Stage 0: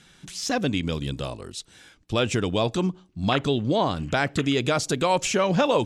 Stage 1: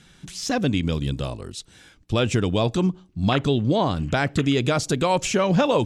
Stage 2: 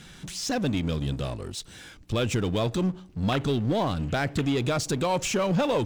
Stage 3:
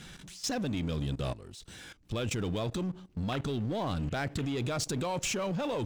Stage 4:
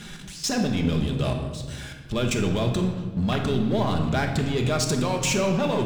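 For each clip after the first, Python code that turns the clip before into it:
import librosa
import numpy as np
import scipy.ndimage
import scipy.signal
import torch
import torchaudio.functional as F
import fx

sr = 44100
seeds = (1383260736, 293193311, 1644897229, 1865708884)

y1 = fx.low_shelf(x, sr, hz=230.0, db=6.5)
y2 = fx.power_curve(y1, sr, exponent=0.7)
y2 = y2 * librosa.db_to_amplitude(-7.5)
y3 = fx.level_steps(y2, sr, step_db=16)
y4 = fx.room_shoebox(y3, sr, seeds[0], volume_m3=1200.0, walls='mixed', distance_m=1.3)
y4 = y4 * librosa.db_to_amplitude(6.5)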